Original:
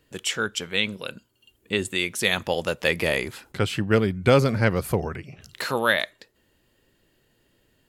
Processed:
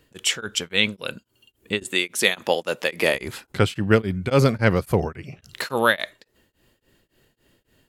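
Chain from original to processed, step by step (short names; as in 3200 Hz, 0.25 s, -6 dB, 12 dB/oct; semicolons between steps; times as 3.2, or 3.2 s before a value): 1.83–3.15 HPF 230 Hz 12 dB/oct; beating tremolo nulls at 3.6 Hz; gain +5 dB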